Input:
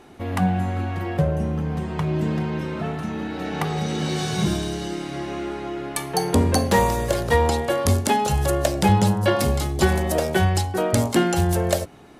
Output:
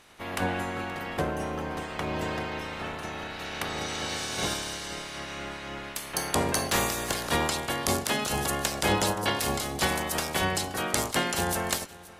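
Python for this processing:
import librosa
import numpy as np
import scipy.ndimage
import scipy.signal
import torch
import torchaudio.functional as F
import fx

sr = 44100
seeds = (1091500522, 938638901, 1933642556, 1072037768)

p1 = fx.spec_clip(x, sr, under_db=22)
p2 = p1 + fx.echo_single(p1, sr, ms=525, db=-20.0, dry=0)
y = F.gain(torch.from_numpy(p2), -8.0).numpy()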